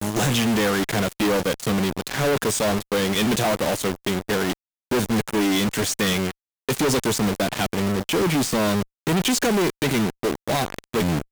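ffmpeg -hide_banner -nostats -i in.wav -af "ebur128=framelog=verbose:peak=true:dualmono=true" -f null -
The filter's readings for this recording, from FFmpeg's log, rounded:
Integrated loudness:
  I:         -19.5 LUFS
  Threshold: -29.5 LUFS
Loudness range:
  LRA:         1.2 LU
  Threshold: -39.6 LUFS
  LRA low:   -20.1 LUFS
  LRA high:  -18.9 LUFS
True peak:
  Peak:      -14.7 dBFS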